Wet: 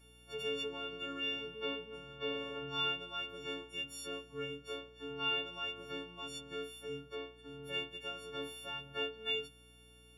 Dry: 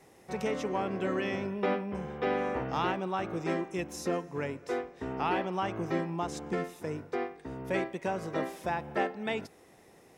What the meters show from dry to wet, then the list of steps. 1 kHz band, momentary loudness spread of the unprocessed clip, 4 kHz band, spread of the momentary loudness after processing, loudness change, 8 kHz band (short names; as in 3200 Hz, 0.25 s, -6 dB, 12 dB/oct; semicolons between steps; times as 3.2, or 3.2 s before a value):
-13.0 dB, 6 LU, +8.5 dB, 10 LU, -6.0 dB, -5.5 dB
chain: frequency quantiser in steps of 4 st; low shelf 270 Hz -10 dB; metallic resonator 140 Hz, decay 0.25 s, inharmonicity 0.008; hum 60 Hz, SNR 22 dB; gain +1 dB